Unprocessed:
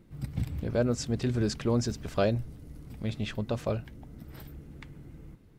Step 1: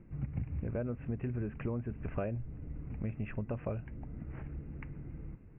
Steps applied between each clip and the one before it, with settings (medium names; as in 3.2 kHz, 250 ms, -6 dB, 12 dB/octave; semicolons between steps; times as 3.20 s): steep low-pass 2.7 kHz 96 dB/octave; bass shelf 170 Hz +5.5 dB; compression 6:1, threshold -32 dBFS, peak gain reduction 12 dB; trim -1 dB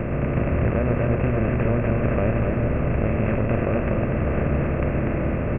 spectral levelling over time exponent 0.2; delay 243 ms -3 dB; trim +7 dB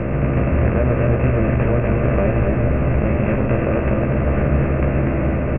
distance through air 55 m; doubling 15 ms -4.5 dB; trim +3 dB